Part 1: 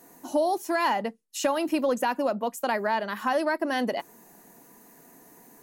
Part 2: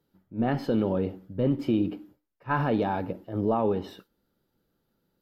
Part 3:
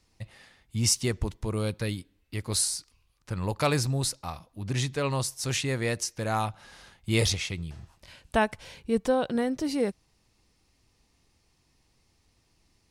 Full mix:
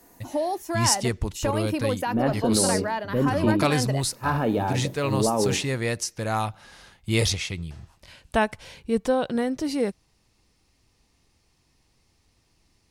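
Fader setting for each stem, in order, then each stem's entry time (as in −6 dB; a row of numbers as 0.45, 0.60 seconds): −2.0, +1.5, +2.0 decibels; 0.00, 1.75, 0.00 seconds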